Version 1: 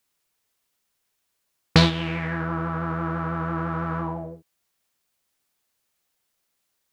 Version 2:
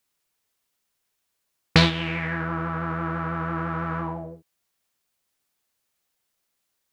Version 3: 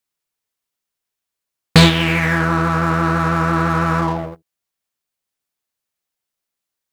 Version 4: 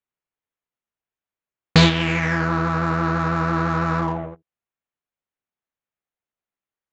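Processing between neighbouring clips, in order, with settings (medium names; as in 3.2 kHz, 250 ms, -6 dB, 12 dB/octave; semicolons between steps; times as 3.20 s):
dynamic bell 2.2 kHz, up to +5 dB, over -41 dBFS, Q 1.1; trim -1.5 dB
waveshaping leveller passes 3
local Wiener filter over 9 samples; resampled via 16 kHz; trim -4 dB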